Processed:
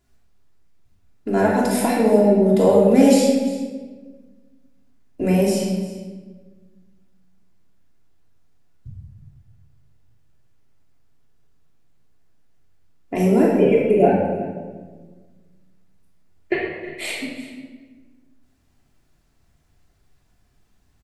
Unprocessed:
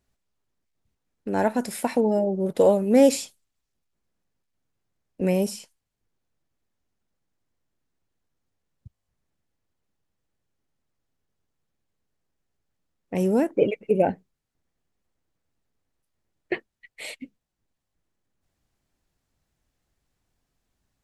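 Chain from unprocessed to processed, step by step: in parallel at +2.5 dB: compression, threshold -29 dBFS, peak gain reduction 16.5 dB; on the sum: delay 348 ms -17 dB; reverberation RT60 1.4 s, pre-delay 3 ms, DRR -5 dB; trim -3 dB

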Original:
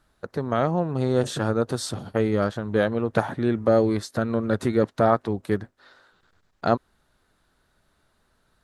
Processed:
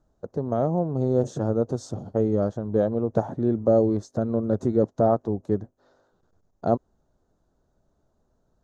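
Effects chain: FFT filter 670 Hz 0 dB, 2.2 kHz -23 dB, 4.5 kHz -16 dB, 6.6 kHz -4 dB, 9.4 kHz -24 dB

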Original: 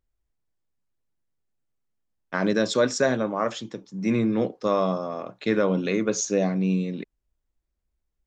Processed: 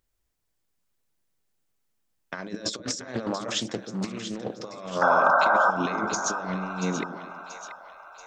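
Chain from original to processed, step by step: tilt EQ +1.5 dB/octave; compressor with a negative ratio -31 dBFS, ratio -0.5; 5.01–5.71 s: painted sound noise 530–1600 Hz -20 dBFS; two-band feedback delay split 610 Hz, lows 134 ms, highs 683 ms, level -10 dB; 2.73–5.03 s: loudspeaker Doppler distortion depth 0.29 ms

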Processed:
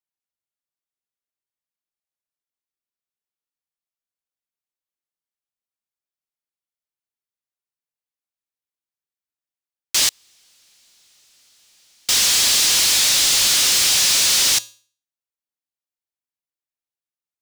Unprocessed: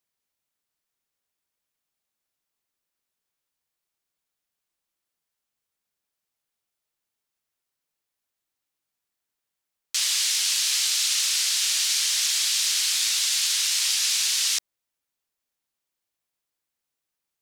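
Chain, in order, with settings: waveshaping leveller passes 5; feedback comb 110 Hz, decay 0.42 s, harmonics odd, mix 50%; 10.04–12.09 s: inverted gate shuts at -15 dBFS, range -40 dB; trim +3 dB

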